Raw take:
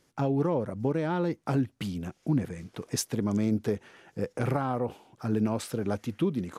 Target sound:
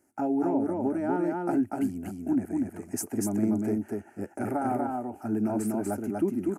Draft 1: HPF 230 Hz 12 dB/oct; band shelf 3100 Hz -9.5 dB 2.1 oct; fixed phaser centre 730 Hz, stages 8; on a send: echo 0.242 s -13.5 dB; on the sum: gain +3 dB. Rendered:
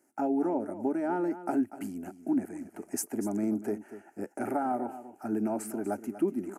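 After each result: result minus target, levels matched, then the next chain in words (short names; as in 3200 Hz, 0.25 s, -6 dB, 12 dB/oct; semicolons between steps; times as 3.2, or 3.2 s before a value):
echo-to-direct -11 dB; 125 Hz band -5.0 dB
HPF 230 Hz 12 dB/oct; band shelf 3100 Hz -9.5 dB 2.1 oct; fixed phaser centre 730 Hz, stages 8; on a send: echo 0.242 s -2.5 dB; on the sum: gain +3 dB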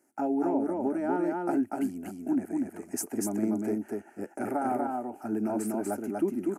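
125 Hz band -5.0 dB
HPF 97 Hz 12 dB/oct; band shelf 3100 Hz -9.5 dB 2.1 oct; fixed phaser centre 730 Hz, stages 8; on a send: echo 0.242 s -2.5 dB; on the sum: gain +3 dB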